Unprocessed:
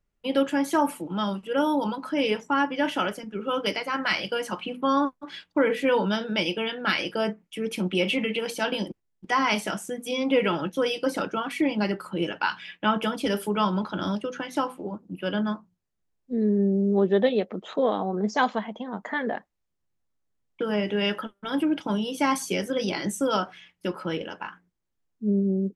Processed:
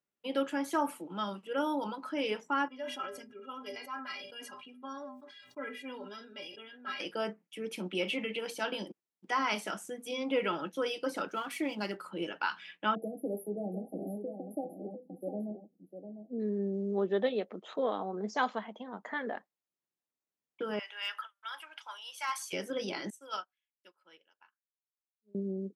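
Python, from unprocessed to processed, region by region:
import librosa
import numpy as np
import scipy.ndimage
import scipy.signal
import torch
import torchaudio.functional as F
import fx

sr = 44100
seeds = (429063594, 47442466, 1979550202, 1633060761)

y = fx.chain(x, sr, fx.stiff_resonator(f0_hz=120.0, decay_s=0.27, stiffness=0.03),
    fx.sustainer(db_per_s=46.0), at=(2.68, 7.0))
y = fx.chain(y, sr, fx.halfwave_gain(db=-3.0),
    fx.high_shelf(hz=6300.0, db=11.5), at=(11.28, 11.97))
y = fx.chain(y, sr, fx.brickwall_bandstop(low_hz=820.0, high_hz=10000.0),
    fx.echo_single(ms=701, db=-8.5), at=(12.95, 16.4))
y = fx.chain(y, sr, fx.highpass(hz=970.0, slope=24),
    fx.clip_hard(threshold_db=-20.0), at=(20.79, 22.53))
y = fx.chain(y, sr, fx.highpass(hz=1500.0, slope=6),
    fx.upward_expand(threshold_db=-49.0, expansion=2.5), at=(23.1, 25.35))
y = scipy.signal.sosfilt(scipy.signal.butter(2, 230.0, 'highpass', fs=sr, output='sos'), y)
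y = fx.dynamic_eq(y, sr, hz=1300.0, q=4.8, threshold_db=-44.0, ratio=4.0, max_db=4)
y = y * 10.0 ** (-8.0 / 20.0)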